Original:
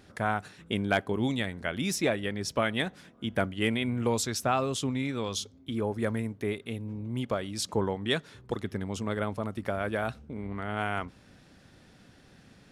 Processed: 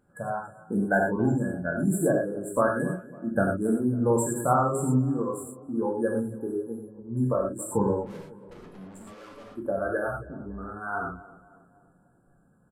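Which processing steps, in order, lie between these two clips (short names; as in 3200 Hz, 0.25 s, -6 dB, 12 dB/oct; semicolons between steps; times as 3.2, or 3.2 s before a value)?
median filter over 3 samples; FFT band-reject 1700–7200 Hz; spectral noise reduction 14 dB; 8–9.52 tube stage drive 49 dB, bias 0.7; downsampling 32000 Hz; on a send: tape echo 0.275 s, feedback 59%, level -16 dB, low-pass 1100 Hz; on the sum: non-linear reverb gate 0.14 s flat, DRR -2 dB; gain +1.5 dB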